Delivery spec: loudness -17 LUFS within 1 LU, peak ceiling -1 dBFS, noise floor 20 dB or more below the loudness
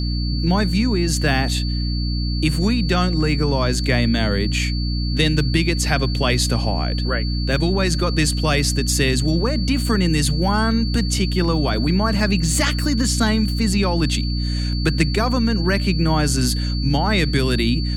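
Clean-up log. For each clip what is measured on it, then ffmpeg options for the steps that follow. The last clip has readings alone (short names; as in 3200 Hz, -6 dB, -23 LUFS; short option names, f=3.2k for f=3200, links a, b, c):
hum 60 Hz; harmonics up to 300 Hz; hum level -19 dBFS; steady tone 4500 Hz; tone level -30 dBFS; loudness -19.5 LUFS; peak -3.5 dBFS; loudness target -17.0 LUFS
-> -af "bandreject=f=60:t=h:w=6,bandreject=f=120:t=h:w=6,bandreject=f=180:t=h:w=6,bandreject=f=240:t=h:w=6,bandreject=f=300:t=h:w=6"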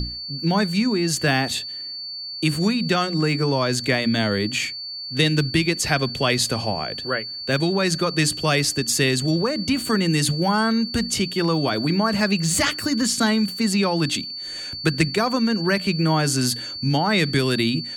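hum none; steady tone 4500 Hz; tone level -30 dBFS
-> -af "bandreject=f=4.5k:w=30"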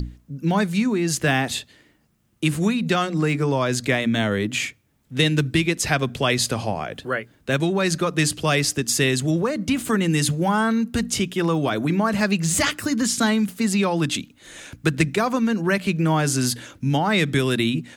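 steady tone none; loudness -22.0 LUFS; peak -5.0 dBFS; loudness target -17.0 LUFS
-> -af "volume=5dB,alimiter=limit=-1dB:level=0:latency=1"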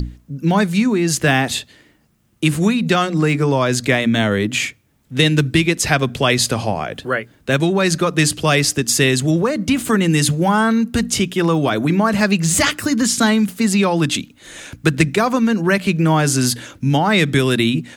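loudness -17.0 LUFS; peak -1.0 dBFS; noise floor -56 dBFS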